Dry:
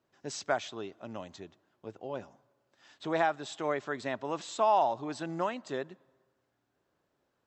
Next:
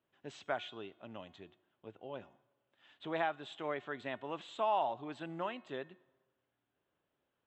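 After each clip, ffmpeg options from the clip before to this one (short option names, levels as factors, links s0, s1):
-af "highshelf=f=4100:t=q:w=3:g=-8.5,bandreject=f=363.2:t=h:w=4,bandreject=f=726.4:t=h:w=4,bandreject=f=1089.6:t=h:w=4,bandreject=f=1452.8:t=h:w=4,bandreject=f=1816:t=h:w=4,bandreject=f=2179.2:t=h:w=4,bandreject=f=2542.4:t=h:w=4,bandreject=f=2905.6:t=h:w=4,bandreject=f=3268.8:t=h:w=4,bandreject=f=3632:t=h:w=4,bandreject=f=3995.2:t=h:w=4,bandreject=f=4358.4:t=h:w=4,bandreject=f=4721.6:t=h:w=4,bandreject=f=5084.8:t=h:w=4,bandreject=f=5448:t=h:w=4,bandreject=f=5811.2:t=h:w=4,bandreject=f=6174.4:t=h:w=4,bandreject=f=6537.6:t=h:w=4,bandreject=f=6900.8:t=h:w=4,bandreject=f=7264:t=h:w=4,bandreject=f=7627.2:t=h:w=4,bandreject=f=7990.4:t=h:w=4,bandreject=f=8353.6:t=h:w=4,bandreject=f=8716.8:t=h:w=4,bandreject=f=9080:t=h:w=4,bandreject=f=9443.2:t=h:w=4,bandreject=f=9806.4:t=h:w=4,bandreject=f=10169.6:t=h:w=4,bandreject=f=10532.8:t=h:w=4,volume=0.447"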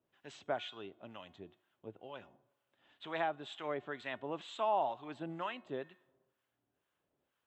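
-filter_complex "[0:a]acrossover=split=870[s0][s1];[s0]aeval=exprs='val(0)*(1-0.7/2+0.7/2*cos(2*PI*2.1*n/s))':c=same[s2];[s1]aeval=exprs='val(0)*(1-0.7/2-0.7/2*cos(2*PI*2.1*n/s))':c=same[s3];[s2][s3]amix=inputs=2:normalize=0,volume=1.41"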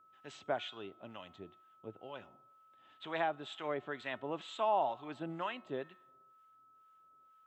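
-af "aeval=exprs='val(0)+0.000708*sin(2*PI*1300*n/s)':c=same,volume=1.12"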